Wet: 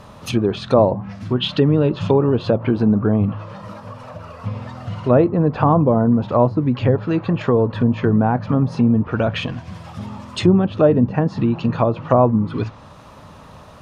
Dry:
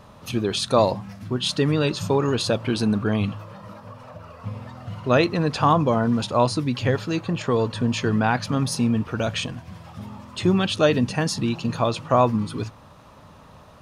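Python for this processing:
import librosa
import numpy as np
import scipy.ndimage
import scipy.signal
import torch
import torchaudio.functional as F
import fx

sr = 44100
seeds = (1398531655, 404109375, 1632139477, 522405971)

y = fx.env_lowpass_down(x, sr, base_hz=760.0, full_db=-18.0)
y = fx.peak_eq(y, sr, hz=3100.0, db=9.0, octaves=0.81, at=(1.35, 2.51))
y = y * librosa.db_to_amplitude(6.0)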